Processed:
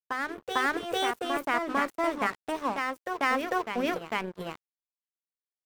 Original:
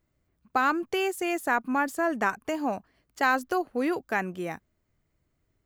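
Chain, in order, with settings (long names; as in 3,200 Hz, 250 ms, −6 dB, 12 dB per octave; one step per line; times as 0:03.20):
tilt shelving filter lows +3.5 dB, about 920 Hz
mains-hum notches 50/100/150/200/250/300/350/400/450 Hz
formants moved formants +4 semitones
dead-zone distortion −37 dBFS
backwards echo 449 ms −5 dB
level −1.5 dB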